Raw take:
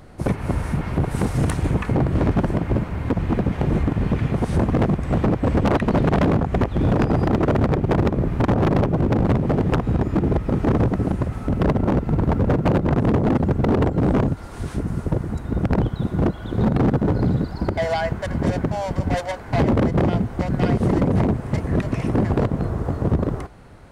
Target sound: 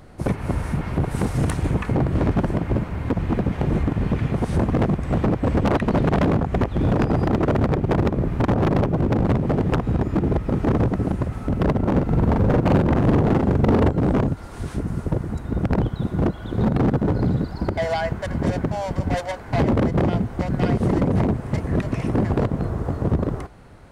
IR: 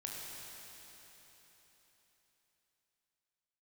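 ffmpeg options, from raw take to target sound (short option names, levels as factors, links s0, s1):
-filter_complex "[0:a]asettb=1/sr,asplit=3[s0][s1][s2];[s0]atrim=end=11.914[s3];[s1]atrim=start=11.91:end=13.91,asetpts=PTS-STARTPTS,afade=t=in:d=0.004:c=qsin,afade=t=out:st=1.996:d=0.004:c=qsin,asplit=2[s4][s5];[s5]adelay=43,volume=0.794[s6];[s4][s6]amix=inputs=2:normalize=0,atrim=end_sample=88200[s7];[s2]atrim=start=13.906[s8];[s3][s7]acrossfade=d=0.004:c1=hsin:c2=qsin[s9];[s9][s8]acrossfade=d=0.004:c1=qsin:c2=hsin,volume=0.891"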